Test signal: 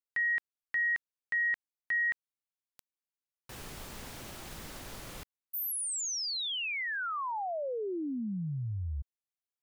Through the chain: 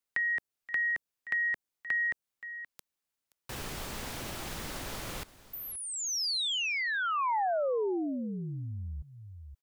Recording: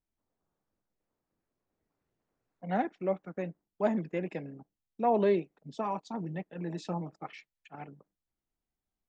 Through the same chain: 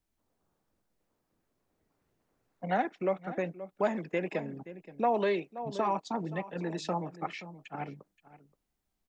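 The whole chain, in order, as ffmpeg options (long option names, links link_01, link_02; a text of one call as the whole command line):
ffmpeg -i in.wav -filter_complex "[0:a]aecho=1:1:525:0.119,acrossover=split=370|910|5600[link_01][link_02][link_03][link_04];[link_01]acompressor=threshold=-45dB:ratio=4[link_05];[link_02]acompressor=threshold=-37dB:ratio=4[link_06];[link_03]acompressor=threshold=-38dB:ratio=4[link_07];[link_04]acompressor=threshold=-50dB:ratio=4[link_08];[link_05][link_06][link_07][link_08]amix=inputs=4:normalize=0,volume=6.5dB" out.wav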